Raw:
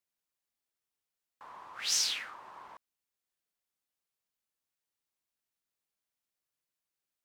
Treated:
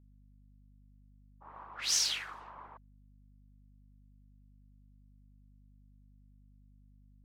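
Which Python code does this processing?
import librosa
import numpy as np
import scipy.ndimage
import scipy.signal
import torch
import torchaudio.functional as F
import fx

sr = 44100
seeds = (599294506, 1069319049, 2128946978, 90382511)

y = fx.env_lowpass(x, sr, base_hz=330.0, full_db=-38.5)
y = fx.whisperise(y, sr, seeds[0])
y = fx.add_hum(y, sr, base_hz=50, snr_db=17)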